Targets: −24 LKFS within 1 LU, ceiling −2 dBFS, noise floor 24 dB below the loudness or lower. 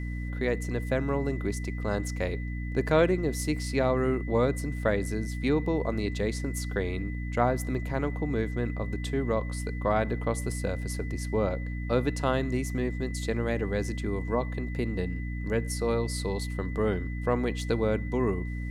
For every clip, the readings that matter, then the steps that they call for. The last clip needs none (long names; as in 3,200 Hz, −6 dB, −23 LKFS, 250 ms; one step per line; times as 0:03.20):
mains hum 60 Hz; hum harmonics up to 300 Hz; level of the hum −31 dBFS; interfering tone 2,000 Hz; level of the tone −44 dBFS; integrated loudness −29.5 LKFS; sample peak −9.5 dBFS; target loudness −24.0 LKFS
→ hum removal 60 Hz, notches 5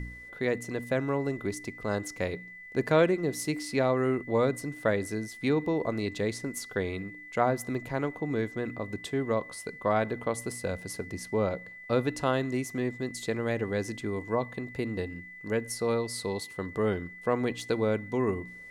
mains hum none found; interfering tone 2,000 Hz; level of the tone −44 dBFS
→ notch filter 2,000 Hz, Q 30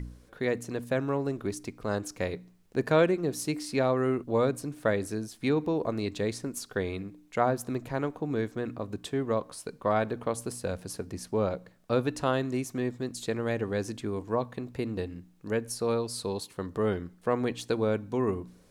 interfering tone none found; integrated loudness −31.0 LKFS; sample peak −10.5 dBFS; target loudness −24.0 LKFS
→ level +7 dB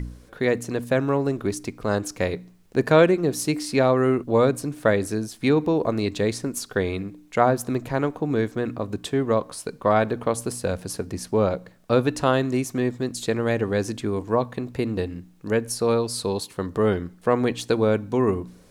integrated loudness −24.0 LKFS; sample peak −3.5 dBFS; background noise floor −52 dBFS